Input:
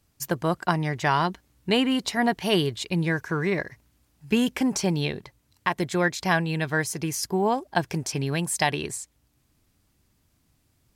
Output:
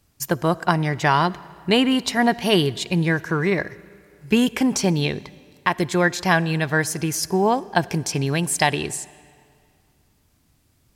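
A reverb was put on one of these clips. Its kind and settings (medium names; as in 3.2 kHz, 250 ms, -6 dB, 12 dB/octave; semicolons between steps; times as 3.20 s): algorithmic reverb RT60 2.3 s, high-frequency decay 0.85×, pre-delay 15 ms, DRR 20 dB; trim +4.5 dB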